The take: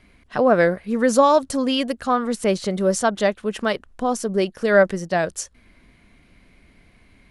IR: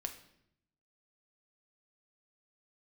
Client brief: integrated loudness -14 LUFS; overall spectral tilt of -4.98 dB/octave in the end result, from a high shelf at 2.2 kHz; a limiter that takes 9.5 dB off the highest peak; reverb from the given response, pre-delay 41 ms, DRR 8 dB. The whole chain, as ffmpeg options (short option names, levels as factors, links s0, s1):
-filter_complex "[0:a]highshelf=f=2200:g=-7,alimiter=limit=0.211:level=0:latency=1,asplit=2[s0][s1];[1:a]atrim=start_sample=2205,adelay=41[s2];[s1][s2]afir=irnorm=-1:irlink=0,volume=0.473[s3];[s0][s3]amix=inputs=2:normalize=0,volume=2.99"